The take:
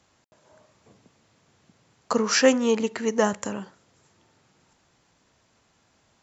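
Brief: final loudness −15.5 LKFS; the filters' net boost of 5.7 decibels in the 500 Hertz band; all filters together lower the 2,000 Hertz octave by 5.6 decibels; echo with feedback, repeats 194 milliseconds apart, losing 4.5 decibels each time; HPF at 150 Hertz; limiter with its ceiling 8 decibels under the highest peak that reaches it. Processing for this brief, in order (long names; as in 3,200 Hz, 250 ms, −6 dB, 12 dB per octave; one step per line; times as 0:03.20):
high-pass filter 150 Hz
parametric band 500 Hz +6.5 dB
parametric band 2,000 Hz −7.5 dB
brickwall limiter −11 dBFS
repeating echo 194 ms, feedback 60%, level −4.5 dB
level +6.5 dB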